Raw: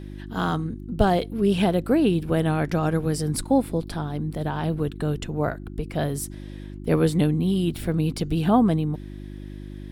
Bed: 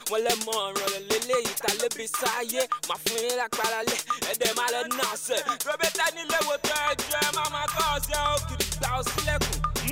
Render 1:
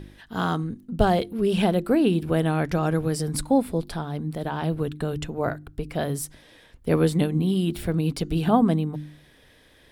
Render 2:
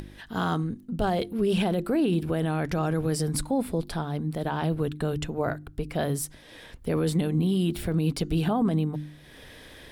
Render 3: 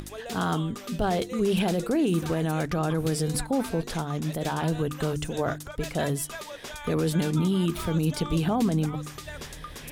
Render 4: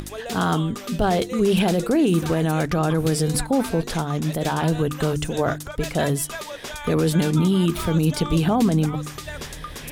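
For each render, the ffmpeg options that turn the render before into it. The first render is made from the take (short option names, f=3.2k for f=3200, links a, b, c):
-af "bandreject=f=50:t=h:w=4,bandreject=f=100:t=h:w=4,bandreject=f=150:t=h:w=4,bandreject=f=200:t=h:w=4,bandreject=f=250:t=h:w=4,bandreject=f=300:t=h:w=4,bandreject=f=350:t=h:w=4"
-af "acompressor=mode=upward:threshold=-37dB:ratio=2.5,alimiter=limit=-17dB:level=0:latency=1:release=11"
-filter_complex "[1:a]volume=-13.5dB[a];[0:a][a]amix=inputs=2:normalize=0"
-af "volume=5.5dB"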